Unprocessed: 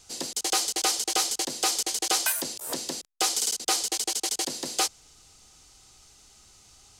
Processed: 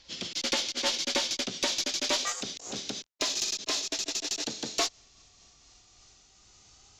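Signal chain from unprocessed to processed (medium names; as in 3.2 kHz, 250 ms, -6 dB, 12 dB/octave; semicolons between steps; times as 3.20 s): pitch bend over the whole clip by -6.5 st ending unshifted; resampled via 16 kHz; Chebyshev shaper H 2 -14 dB, 3 -25 dB, 5 -27 dB, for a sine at -11.5 dBFS; trim -2 dB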